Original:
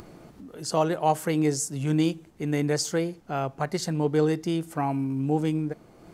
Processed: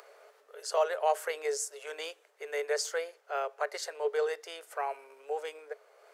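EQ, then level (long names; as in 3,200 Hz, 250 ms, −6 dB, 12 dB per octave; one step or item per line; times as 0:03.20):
Chebyshev high-pass with heavy ripple 410 Hz, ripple 6 dB
0.0 dB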